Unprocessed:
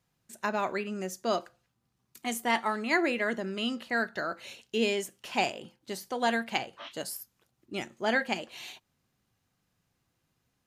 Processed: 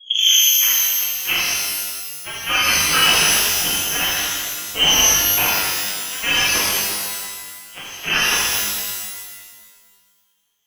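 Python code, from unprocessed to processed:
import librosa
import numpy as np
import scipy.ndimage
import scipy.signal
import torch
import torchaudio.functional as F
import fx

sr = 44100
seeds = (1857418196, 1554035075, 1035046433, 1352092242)

p1 = fx.tape_start_head(x, sr, length_s=1.2)
p2 = fx.low_shelf(p1, sr, hz=290.0, db=6.0)
p3 = fx.doubler(p2, sr, ms=35.0, db=-7)
p4 = p3 + fx.echo_single(p3, sr, ms=160, db=-9.0, dry=0)
p5 = fx.cheby_harmonics(p4, sr, harmonics=(5, 6, 7, 8), levels_db=(-11, -19, -8, -17), full_scale_db=-10.5)
p6 = fx.freq_invert(p5, sr, carrier_hz=3300)
p7 = fx.rev_shimmer(p6, sr, seeds[0], rt60_s=1.6, semitones=12, shimmer_db=-2, drr_db=-7.0)
y = p7 * librosa.db_to_amplitude(-1.0)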